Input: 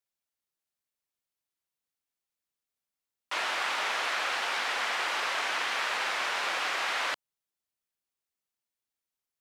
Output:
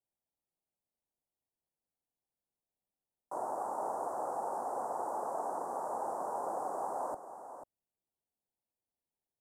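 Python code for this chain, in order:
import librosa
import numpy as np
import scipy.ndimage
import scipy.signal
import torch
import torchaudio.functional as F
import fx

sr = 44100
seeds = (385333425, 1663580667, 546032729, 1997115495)

y = scipy.signal.sosfilt(scipy.signal.cheby1(3, 1.0, [840.0, 8500.0], 'bandstop', fs=sr, output='sos'), x)
y = fx.high_shelf(y, sr, hz=3800.0, db=-11.5)
y = y + 10.0 ** (-10.5 / 20.0) * np.pad(y, (int(491 * sr / 1000.0), 0))[:len(y)]
y = y * librosa.db_to_amplitude(3.0)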